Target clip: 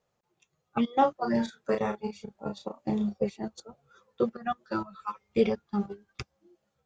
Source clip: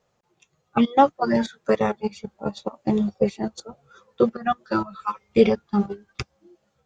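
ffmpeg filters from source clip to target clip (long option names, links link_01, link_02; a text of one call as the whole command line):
ffmpeg -i in.wav -filter_complex "[0:a]asettb=1/sr,asplit=3[link_01][link_02][link_03];[link_01]atrim=end=0.904[link_04];[link_02]atrim=start=0.9:end=3.17,asetpts=PTS-STARTPTS,afade=type=in:duration=0.004:curve=qsin,afade=type=out:start_time=2.266:duration=0.004:curve=qsin,asplit=2[link_05][link_06];[link_06]adelay=34,volume=-5.5dB[link_07];[link_05][link_07]amix=inputs=2:normalize=0,atrim=end_sample=100107[link_08];[link_03]atrim=start=3.166[link_09];[link_04][link_08]acrossfade=duration=0.004:curve1=hsin:curve2=qsin[link_10];[link_10][link_09]acrossfade=duration=0.004:curve1=qsin:curve2=hsin,volume=-8dB" out.wav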